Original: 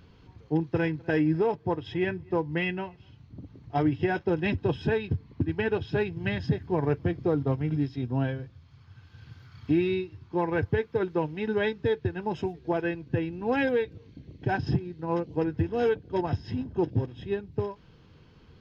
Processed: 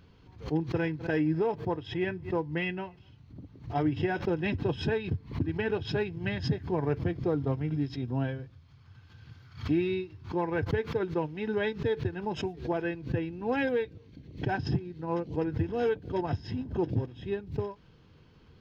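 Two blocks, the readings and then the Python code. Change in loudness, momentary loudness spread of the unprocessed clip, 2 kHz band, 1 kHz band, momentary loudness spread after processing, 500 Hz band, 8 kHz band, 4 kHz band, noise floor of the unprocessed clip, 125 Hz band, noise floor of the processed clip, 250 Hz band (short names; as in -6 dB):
-2.5 dB, 8 LU, -3.0 dB, -3.0 dB, 7 LU, -3.0 dB, n/a, 0.0 dB, -56 dBFS, -2.0 dB, -57 dBFS, -2.5 dB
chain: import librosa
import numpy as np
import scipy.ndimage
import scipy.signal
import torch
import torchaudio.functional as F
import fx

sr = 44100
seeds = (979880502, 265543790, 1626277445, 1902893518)

y = fx.pre_swell(x, sr, db_per_s=150.0)
y = y * librosa.db_to_amplitude(-3.0)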